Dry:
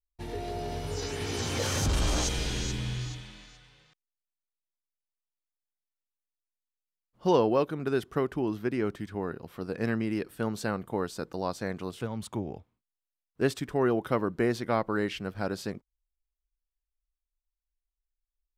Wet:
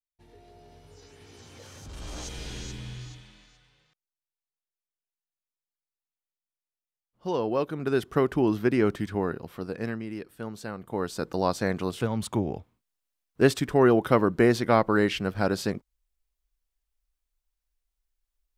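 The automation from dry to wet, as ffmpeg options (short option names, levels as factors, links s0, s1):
-af "volume=8.41,afade=t=in:st=1.85:d=0.67:silence=0.251189,afade=t=in:st=7.33:d=1.11:silence=0.237137,afade=t=out:st=9.09:d=0.91:silence=0.251189,afade=t=in:st=10.76:d=0.62:silence=0.251189"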